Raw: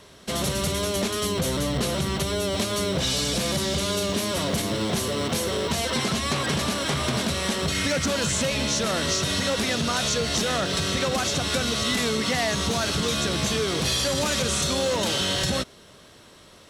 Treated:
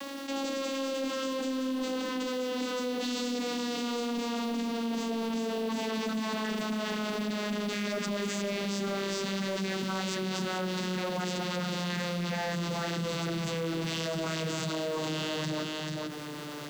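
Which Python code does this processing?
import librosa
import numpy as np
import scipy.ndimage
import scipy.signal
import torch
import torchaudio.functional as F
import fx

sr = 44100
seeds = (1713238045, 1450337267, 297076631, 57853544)

p1 = fx.vocoder_glide(x, sr, note=61, semitones=-11)
p2 = scipy.signal.sosfilt(scipy.signal.butter(2, 250.0, 'highpass', fs=sr, output='sos'), p1)
p3 = fx.peak_eq(p2, sr, hz=600.0, db=-4.5, octaves=1.1)
p4 = 10.0 ** (-23.5 / 20.0) * np.tanh(p3 / 10.0 ** (-23.5 / 20.0))
p5 = fx.quant_companded(p4, sr, bits=6)
p6 = p5 + fx.echo_single(p5, sr, ms=439, db=-9.0, dry=0)
p7 = fx.env_flatten(p6, sr, amount_pct=70)
y = F.gain(torch.from_numpy(p7), -4.5).numpy()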